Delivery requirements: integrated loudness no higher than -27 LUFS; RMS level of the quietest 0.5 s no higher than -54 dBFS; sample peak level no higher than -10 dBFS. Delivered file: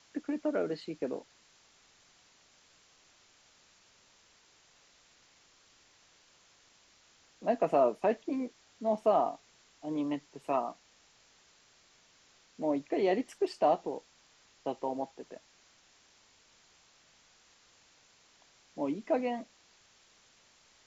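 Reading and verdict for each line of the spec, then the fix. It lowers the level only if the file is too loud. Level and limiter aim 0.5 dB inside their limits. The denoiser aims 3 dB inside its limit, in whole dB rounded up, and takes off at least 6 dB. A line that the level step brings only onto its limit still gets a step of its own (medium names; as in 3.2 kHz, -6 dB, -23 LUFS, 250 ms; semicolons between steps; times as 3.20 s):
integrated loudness -33.0 LUFS: pass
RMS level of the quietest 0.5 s -64 dBFS: pass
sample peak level -15.5 dBFS: pass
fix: none needed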